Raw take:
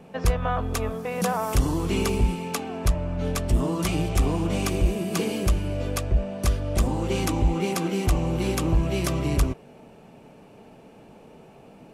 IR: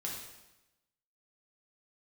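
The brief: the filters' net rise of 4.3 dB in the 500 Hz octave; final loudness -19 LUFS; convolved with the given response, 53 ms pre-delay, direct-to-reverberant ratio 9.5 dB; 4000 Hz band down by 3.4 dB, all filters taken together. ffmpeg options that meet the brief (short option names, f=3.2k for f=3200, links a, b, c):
-filter_complex "[0:a]equalizer=f=500:t=o:g=5.5,equalizer=f=4k:t=o:g=-5,asplit=2[a][b];[1:a]atrim=start_sample=2205,adelay=53[c];[b][c]afir=irnorm=-1:irlink=0,volume=-10.5dB[d];[a][d]amix=inputs=2:normalize=0,volume=5dB"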